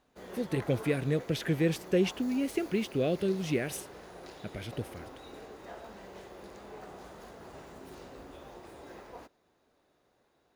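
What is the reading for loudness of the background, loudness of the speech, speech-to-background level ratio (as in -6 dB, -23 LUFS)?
-47.5 LUFS, -31.5 LUFS, 16.0 dB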